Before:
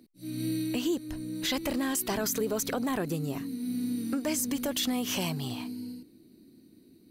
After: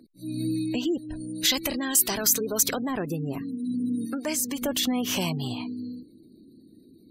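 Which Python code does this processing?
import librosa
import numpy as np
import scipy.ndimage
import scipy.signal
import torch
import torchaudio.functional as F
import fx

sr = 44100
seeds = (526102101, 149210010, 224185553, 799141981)

y = fx.low_shelf(x, sr, hz=330.0, db=-8.0, at=(4.05, 4.62))
y = fx.spec_gate(y, sr, threshold_db=-30, keep='strong')
y = fx.high_shelf(y, sr, hz=2500.0, db=12.0, at=(1.2, 2.83), fade=0.02)
y = fx.rider(y, sr, range_db=3, speed_s=2.0)
y = F.gain(torch.from_numpy(y), 1.0).numpy()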